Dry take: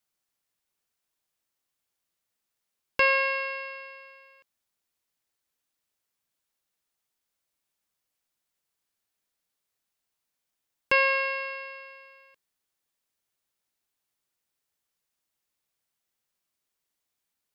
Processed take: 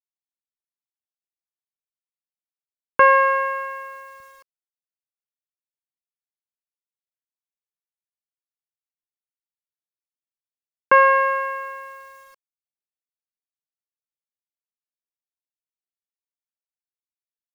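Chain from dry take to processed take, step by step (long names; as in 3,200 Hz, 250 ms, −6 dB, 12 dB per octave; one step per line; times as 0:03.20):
high-pass filter 54 Hz 12 dB per octave, from 0:04.20 120 Hz
dynamic equaliser 260 Hz, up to +7 dB, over −44 dBFS, Q 0.77
low-pass with resonance 1,300 Hz, resonance Q 4
bit reduction 10 bits
level +5 dB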